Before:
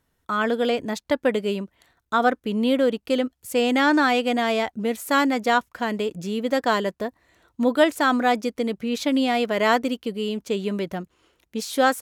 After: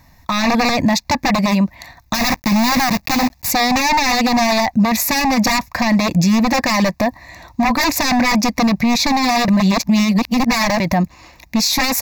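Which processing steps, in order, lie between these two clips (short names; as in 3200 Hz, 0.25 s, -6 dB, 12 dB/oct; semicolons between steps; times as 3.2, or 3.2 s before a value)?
2.14–3.53 block floating point 3-bit; wavefolder -21.5 dBFS; 9.48–10.8 reverse; fixed phaser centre 2100 Hz, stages 8; maximiser +31 dB; gain -6.5 dB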